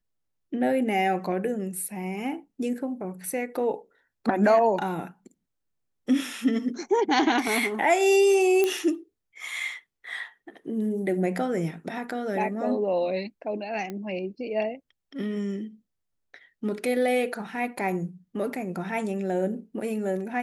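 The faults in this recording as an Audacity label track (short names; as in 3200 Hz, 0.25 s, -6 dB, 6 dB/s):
8.640000	8.640000	pop -11 dBFS
13.900000	13.900000	pop -21 dBFS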